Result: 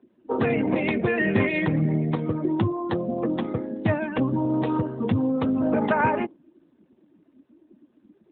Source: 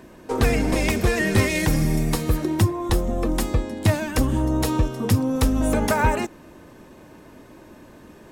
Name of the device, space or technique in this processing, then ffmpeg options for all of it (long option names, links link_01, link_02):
mobile call with aggressive noise cancelling: -filter_complex "[0:a]asettb=1/sr,asplit=3[link_01][link_02][link_03];[link_01]atrim=end=4.684[link_04];[link_02]atrim=start=4.68:end=5.73,asetpts=PTS-STARTPTS,afade=type=in:duration=0.004:curve=qsin,afade=type=out:start_time=1.046:duration=0.004:curve=qsin,highshelf=frequency=11000:gain=-3.5[link_05];[link_03]atrim=start=5.726[link_06];[link_04][link_05]acrossfade=duration=0.004:curve1=hsin:curve2=qsin[link_07];[link_07][link_06]acrossfade=duration=0.004:curve1=qsin:curve2=hsin,highpass=frequency=120:width=0.5412,highpass=frequency=120:width=1.3066,afftdn=noise_reduction=22:noise_floor=-32" -ar 8000 -c:a libopencore_amrnb -b:a 12200